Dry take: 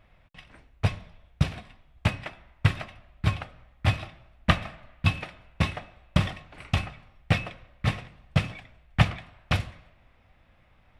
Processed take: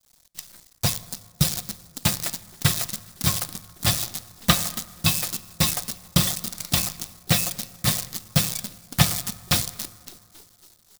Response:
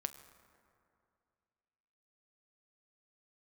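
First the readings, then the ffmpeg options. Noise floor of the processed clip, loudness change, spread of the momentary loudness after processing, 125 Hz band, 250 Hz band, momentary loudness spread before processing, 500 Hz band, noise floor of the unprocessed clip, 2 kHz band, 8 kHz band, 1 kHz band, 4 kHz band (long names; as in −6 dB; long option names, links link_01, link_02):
−58 dBFS, +5.0 dB, 13 LU, 0.0 dB, +3.5 dB, 16 LU, +1.5 dB, −61 dBFS, +1.0 dB, +25.0 dB, +1.5 dB, +10.5 dB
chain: -filter_complex "[0:a]highpass=frequency=86:poles=1,lowshelf=frequency=140:gain=3.5,aecho=1:1:5.7:0.52,asplit=6[link_01][link_02][link_03][link_04][link_05][link_06];[link_02]adelay=277,afreqshift=55,volume=-19.5dB[link_07];[link_03]adelay=554,afreqshift=110,volume=-24.1dB[link_08];[link_04]adelay=831,afreqshift=165,volume=-28.7dB[link_09];[link_05]adelay=1108,afreqshift=220,volume=-33.2dB[link_10];[link_06]adelay=1385,afreqshift=275,volume=-37.8dB[link_11];[link_01][link_07][link_08][link_09][link_10][link_11]amix=inputs=6:normalize=0,acrusher=bits=7:dc=4:mix=0:aa=0.000001,aexciter=amount=8.1:drive=3.6:freq=3800,agate=range=-33dB:threshold=-45dB:ratio=3:detection=peak,asplit=2[link_12][link_13];[1:a]atrim=start_sample=2205[link_14];[link_13][link_14]afir=irnorm=-1:irlink=0,volume=-1.5dB[link_15];[link_12][link_15]amix=inputs=2:normalize=0,volume=-4.5dB"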